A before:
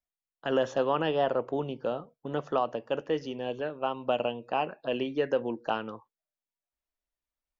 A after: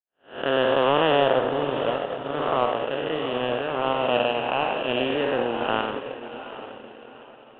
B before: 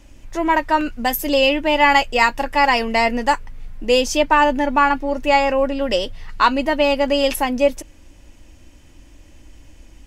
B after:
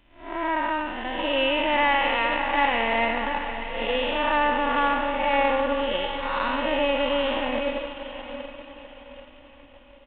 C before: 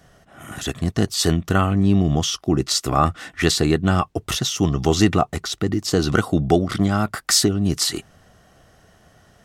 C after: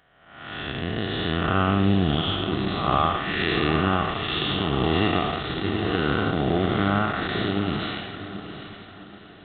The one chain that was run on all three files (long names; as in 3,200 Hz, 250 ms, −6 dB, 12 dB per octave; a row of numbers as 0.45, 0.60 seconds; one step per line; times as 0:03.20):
spectrum smeared in time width 278 ms
low-shelf EQ 480 Hz −11 dB
in parallel at −1 dB: downward compressor, threshold −33 dBFS
on the sum: soft clipping −16 dBFS
feedback delay with all-pass diffusion 771 ms, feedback 49%, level −8 dB
power curve on the samples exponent 1.4
downsampling to 8,000 Hz
loudness normalisation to −24 LKFS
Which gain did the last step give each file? +14.0, +4.0, +8.5 decibels